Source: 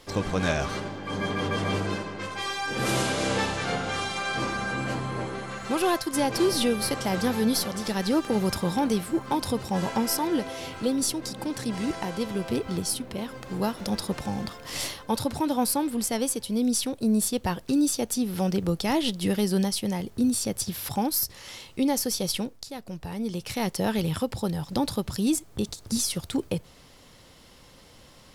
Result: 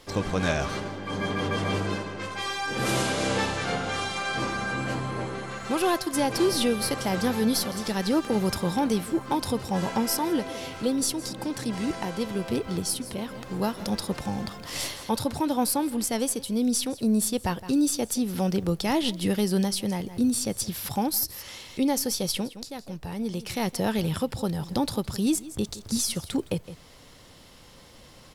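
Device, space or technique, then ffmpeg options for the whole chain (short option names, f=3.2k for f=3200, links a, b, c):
ducked delay: -filter_complex "[0:a]asplit=3[a][b][c];[b]adelay=164,volume=-4dB[d];[c]apad=whole_len=1257435[e];[d][e]sidechaincompress=threshold=-42dB:ratio=8:attack=6.2:release=226[f];[a][f]amix=inputs=2:normalize=0"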